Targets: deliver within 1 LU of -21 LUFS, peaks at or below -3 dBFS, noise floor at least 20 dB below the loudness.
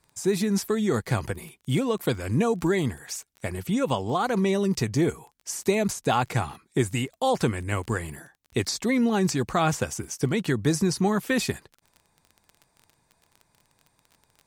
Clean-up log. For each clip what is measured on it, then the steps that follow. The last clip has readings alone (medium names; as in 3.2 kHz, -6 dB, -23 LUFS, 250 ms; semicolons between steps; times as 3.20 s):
tick rate 22 per s; loudness -26.0 LUFS; peak level -9.5 dBFS; loudness target -21.0 LUFS
-> de-click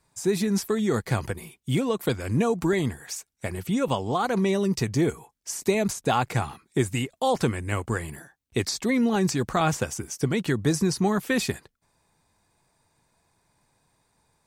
tick rate 0 per s; loudness -26.0 LUFS; peak level -9.5 dBFS; loudness target -21.0 LUFS
-> trim +5 dB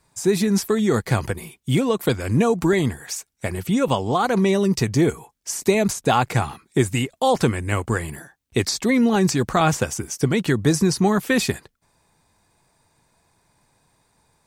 loudness -21.0 LUFS; peak level -4.5 dBFS; noise floor -68 dBFS